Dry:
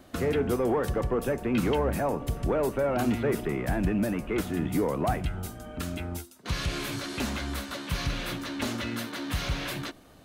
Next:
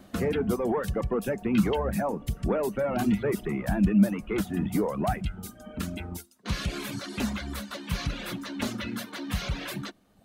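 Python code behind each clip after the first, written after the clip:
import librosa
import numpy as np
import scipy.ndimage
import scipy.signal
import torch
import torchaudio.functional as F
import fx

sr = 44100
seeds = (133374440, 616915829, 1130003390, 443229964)

y = fx.dereverb_blind(x, sr, rt60_s=1.1)
y = fx.peak_eq(y, sr, hz=200.0, db=12.5, octaves=0.22)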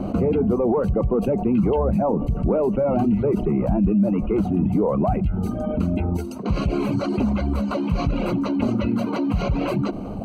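y = scipy.signal.lfilter(np.full(25, 1.0 / 25), 1.0, x)
y = fx.env_flatten(y, sr, amount_pct=70)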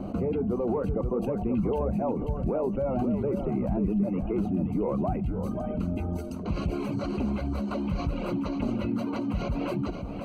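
y = x + 10.0 ** (-8.0 / 20.0) * np.pad(x, (int(533 * sr / 1000.0), 0))[:len(x)]
y = F.gain(torch.from_numpy(y), -8.0).numpy()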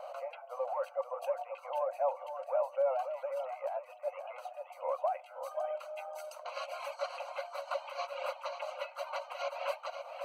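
y = fx.brickwall_highpass(x, sr, low_hz=510.0)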